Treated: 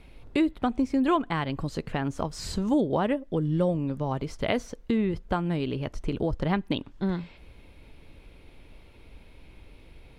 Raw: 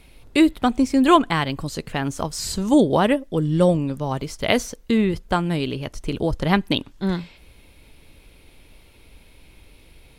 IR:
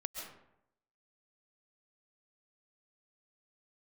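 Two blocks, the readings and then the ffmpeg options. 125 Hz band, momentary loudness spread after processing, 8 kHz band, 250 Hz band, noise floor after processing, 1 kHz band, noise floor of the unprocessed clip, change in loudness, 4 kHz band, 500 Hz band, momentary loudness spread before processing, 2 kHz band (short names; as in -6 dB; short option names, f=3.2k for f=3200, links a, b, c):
-5.0 dB, 7 LU, -13.0 dB, -6.5 dB, -52 dBFS, -8.5 dB, -51 dBFS, -7.0 dB, -11.0 dB, -7.0 dB, 10 LU, -9.0 dB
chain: -af "lowpass=f=2k:p=1,acompressor=threshold=-27dB:ratio=2"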